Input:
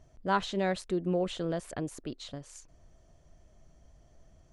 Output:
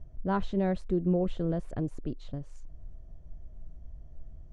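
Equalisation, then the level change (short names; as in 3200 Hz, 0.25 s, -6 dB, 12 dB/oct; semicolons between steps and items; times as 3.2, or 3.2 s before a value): tilt -4 dB/oct; -4.5 dB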